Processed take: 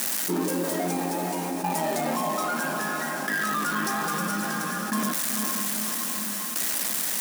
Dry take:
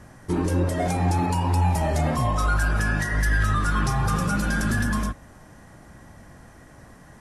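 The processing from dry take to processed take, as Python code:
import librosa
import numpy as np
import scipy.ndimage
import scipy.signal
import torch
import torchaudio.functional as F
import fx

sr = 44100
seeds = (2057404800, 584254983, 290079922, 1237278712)

y = x + 0.5 * 10.0 ** (-23.0 / 20.0) * np.diff(np.sign(x), prepend=np.sign(x[:1]))
y = fx.rider(y, sr, range_db=4, speed_s=0.5)
y = fx.tremolo_shape(y, sr, shape='saw_down', hz=0.61, depth_pct=100)
y = fx.brickwall_highpass(y, sr, low_hz=170.0)
y = fx.echo_diffused(y, sr, ms=479, feedback_pct=46, wet_db=-8.0)
y = fx.env_flatten(y, sr, amount_pct=70)
y = y * librosa.db_to_amplitude(-1.0)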